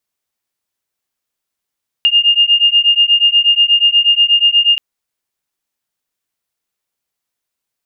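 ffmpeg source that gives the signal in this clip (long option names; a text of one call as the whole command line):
ffmpeg -f lavfi -i "aevalsrc='0.282*(sin(2*PI*2820*t)+sin(2*PI*2828.3*t))':duration=2.73:sample_rate=44100" out.wav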